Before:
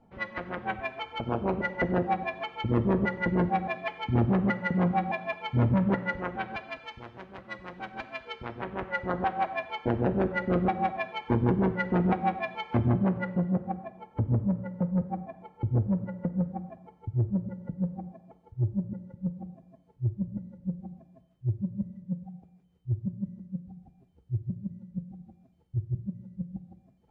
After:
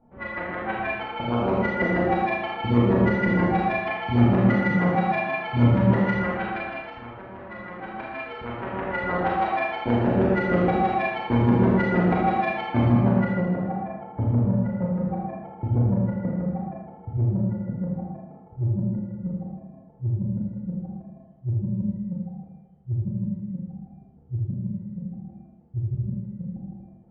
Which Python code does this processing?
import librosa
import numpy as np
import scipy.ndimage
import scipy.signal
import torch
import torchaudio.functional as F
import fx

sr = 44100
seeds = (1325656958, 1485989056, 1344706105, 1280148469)

y = fx.rev_schroeder(x, sr, rt60_s=1.2, comb_ms=26, drr_db=-5.0)
y = fx.env_lowpass(y, sr, base_hz=1300.0, full_db=-16.0)